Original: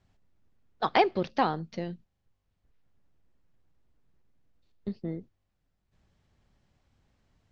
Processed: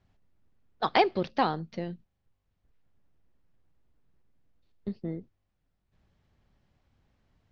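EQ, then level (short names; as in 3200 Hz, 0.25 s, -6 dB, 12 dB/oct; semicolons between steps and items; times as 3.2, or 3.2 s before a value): dynamic EQ 4600 Hz, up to +6 dB, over -47 dBFS, Q 1.2; air absorption 77 m; 0.0 dB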